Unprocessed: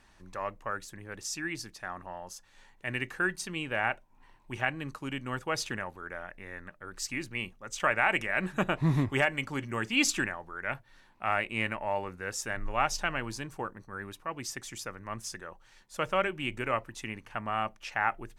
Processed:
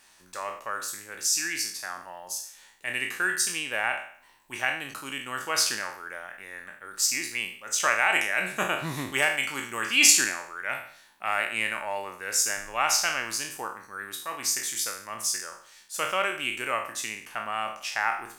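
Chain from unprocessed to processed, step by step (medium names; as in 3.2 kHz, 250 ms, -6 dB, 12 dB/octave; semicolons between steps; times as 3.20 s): spectral sustain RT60 0.54 s; RIAA curve recording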